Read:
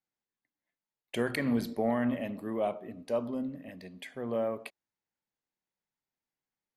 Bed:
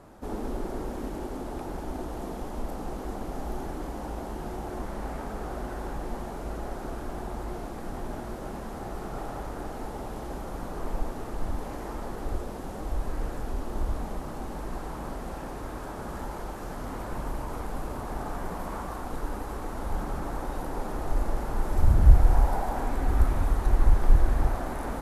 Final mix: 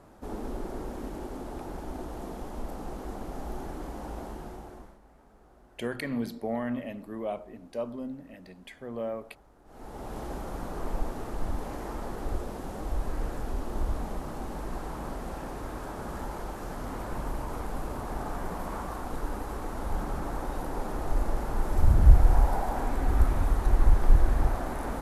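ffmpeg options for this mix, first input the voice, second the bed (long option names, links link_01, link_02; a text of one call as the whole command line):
ffmpeg -i stem1.wav -i stem2.wav -filter_complex "[0:a]adelay=4650,volume=-2.5dB[link_01];[1:a]volume=19.5dB,afade=type=out:start_time=4.23:duration=0.76:silence=0.1,afade=type=in:start_time=9.65:duration=0.54:silence=0.0749894[link_02];[link_01][link_02]amix=inputs=2:normalize=0" out.wav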